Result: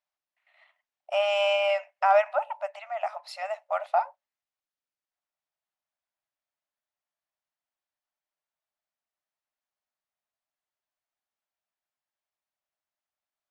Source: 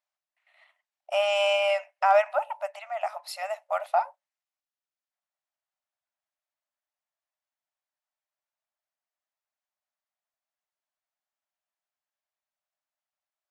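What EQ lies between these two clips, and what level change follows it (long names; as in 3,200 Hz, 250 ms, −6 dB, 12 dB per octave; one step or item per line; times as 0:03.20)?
high-frequency loss of the air 73 metres
0.0 dB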